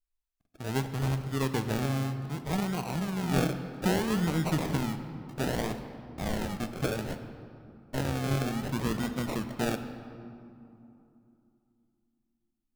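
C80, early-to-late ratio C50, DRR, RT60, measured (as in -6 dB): 10.5 dB, 9.5 dB, 8.0 dB, 2.9 s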